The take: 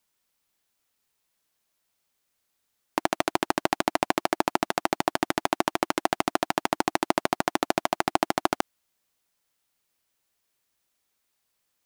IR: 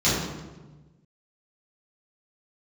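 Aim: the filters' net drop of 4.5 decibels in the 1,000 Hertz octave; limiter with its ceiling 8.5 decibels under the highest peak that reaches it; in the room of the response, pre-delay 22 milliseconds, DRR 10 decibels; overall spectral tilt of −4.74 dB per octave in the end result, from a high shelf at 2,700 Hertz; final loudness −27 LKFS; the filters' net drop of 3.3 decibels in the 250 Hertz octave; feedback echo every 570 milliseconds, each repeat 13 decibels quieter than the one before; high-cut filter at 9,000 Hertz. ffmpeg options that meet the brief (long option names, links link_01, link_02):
-filter_complex "[0:a]lowpass=9000,equalizer=frequency=250:width_type=o:gain=-4,equalizer=frequency=1000:width_type=o:gain=-5,highshelf=frequency=2700:gain=-6.5,alimiter=limit=-15dB:level=0:latency=1,aecho=1:1:570|1140|1710:0.224|0.0493|0.0108,asplit=2[link_01][link_02];[1:a]atrim=start_sample=2205,adelay=22[link_03];[link_02][link_03]afir=irnorm=-1:irlink=0,volume=-27dB[link_04];[link_01][link_04]amix=inputs=2:normalize=0,volume=10dB"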